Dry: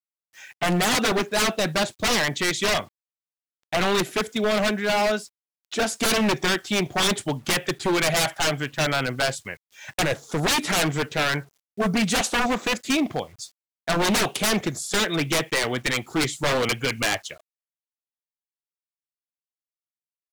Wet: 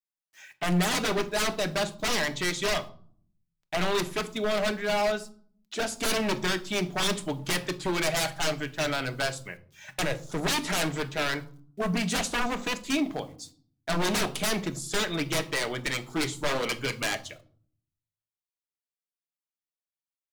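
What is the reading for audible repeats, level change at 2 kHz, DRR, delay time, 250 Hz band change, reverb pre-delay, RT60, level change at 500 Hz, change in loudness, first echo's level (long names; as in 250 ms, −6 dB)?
no echo audible, −5.5 dB, 10.0 dB, no echo audible, −5.0 dB, 3 ms, 0.55 s, −4.5 dB, −5.5 dB, no echo audible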